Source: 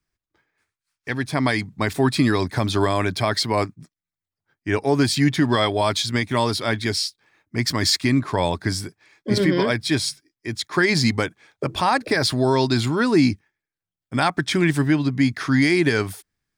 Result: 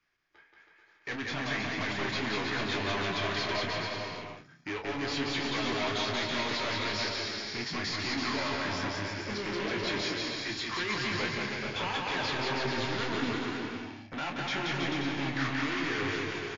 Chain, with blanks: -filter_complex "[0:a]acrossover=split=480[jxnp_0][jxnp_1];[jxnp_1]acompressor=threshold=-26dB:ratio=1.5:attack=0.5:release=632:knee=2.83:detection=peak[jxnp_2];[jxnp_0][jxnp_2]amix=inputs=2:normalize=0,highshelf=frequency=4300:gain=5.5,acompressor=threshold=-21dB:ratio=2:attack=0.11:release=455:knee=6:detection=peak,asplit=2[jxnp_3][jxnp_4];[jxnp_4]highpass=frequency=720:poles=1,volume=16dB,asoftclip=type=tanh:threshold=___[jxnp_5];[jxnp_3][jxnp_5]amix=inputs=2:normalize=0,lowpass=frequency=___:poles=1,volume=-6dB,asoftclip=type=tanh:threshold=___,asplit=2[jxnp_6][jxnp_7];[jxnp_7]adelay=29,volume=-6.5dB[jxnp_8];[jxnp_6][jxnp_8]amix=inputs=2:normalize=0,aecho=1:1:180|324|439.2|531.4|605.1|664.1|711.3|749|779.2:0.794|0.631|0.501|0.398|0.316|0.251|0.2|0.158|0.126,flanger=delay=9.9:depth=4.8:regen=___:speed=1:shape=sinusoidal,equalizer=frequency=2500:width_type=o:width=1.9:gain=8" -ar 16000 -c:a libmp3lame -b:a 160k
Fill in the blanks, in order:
-14dB, 1100, -32.5dB, -47